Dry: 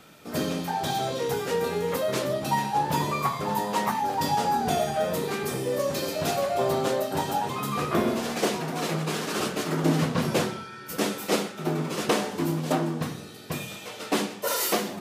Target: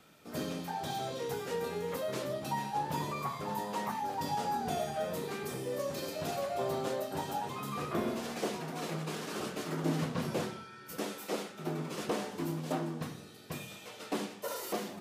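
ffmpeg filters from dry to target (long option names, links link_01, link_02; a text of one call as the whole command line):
ffmpeg -i in.wav -filter_complex "[0:a]asettb=1/sr,asplit=3[link_01][link_02][link_03];[link_01]atrim=end=11.004[link_04];[link_02]atrim=start=11:end=11.5,asetpts=PTS-STARTPTS,afade=type=in:duration=0.004:curve=qsin,afade=type=out:start_time=0.496:duration=0.004:curve=qsin,lowshelf=frequency=140:gain=-12[link_05];[link_03]atrim=start=11.496[link_06];[link_04][link_05]acrossfade=duration=0.004:curve1=hsin:curve2=qsin[link_07];[link_07][link_06]acrossfade=duration=0.004:curve1=qsin:curve2=hsin,acrossover=split=1100[link_08][link_09];[link_09]alimiter=level_in=1.5dB:limit=-24dB:level=0:latency=1:release=25,volume=-1.5dB[link_10];[link_08][link_10]amix=inputs=2:normalize=0,volume=-9dB" out.wav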